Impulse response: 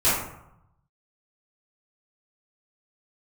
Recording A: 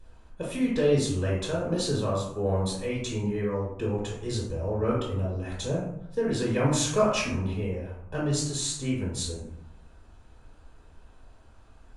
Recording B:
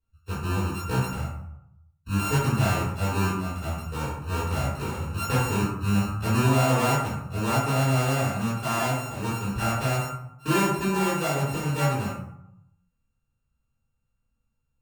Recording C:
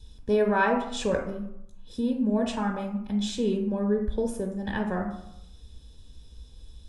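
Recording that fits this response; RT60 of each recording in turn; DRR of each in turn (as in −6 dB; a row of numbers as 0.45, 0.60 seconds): B; 0.80, 0.80, 0.80 seconds; −5.5, −15.0, 2.0 decibels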